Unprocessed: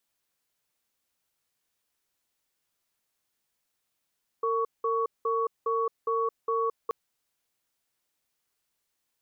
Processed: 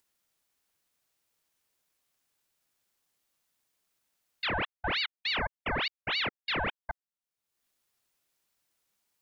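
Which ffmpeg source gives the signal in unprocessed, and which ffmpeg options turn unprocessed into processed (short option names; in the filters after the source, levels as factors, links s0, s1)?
-f lavfi -i "aevalsrc='0.0447*(sin(2*PI*456*t)+sin(2*PI*1120*t))*clip(min(mod(t,0.41),0.22-mod(t,0.41))/0.005,0,1)':d=2.48:s=44100"
-af "acompressor=mode=upward:threshold=0.00891:ratio=2.5,afwtdn=0.0158,aeval=exprs='val(0)*sin(2*PI*1900*n/s+1900*0.8/3.4*sin(2*PI*3.4*n/s))':c=same"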